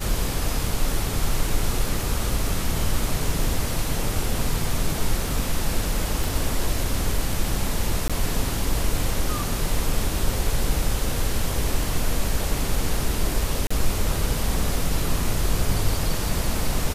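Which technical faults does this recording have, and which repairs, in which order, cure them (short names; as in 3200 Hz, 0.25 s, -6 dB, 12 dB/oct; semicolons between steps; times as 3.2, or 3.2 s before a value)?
6.24 pop
8.08–8.1 gap 16 ms
13.67–13.71 gap 35 ms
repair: de-click; interpolate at 8.08, 16 ms; interpolate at 13.67, 35 ms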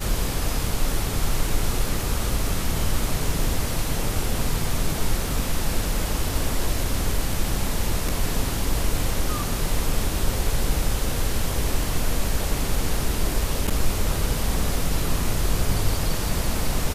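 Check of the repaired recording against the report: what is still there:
6.24 pop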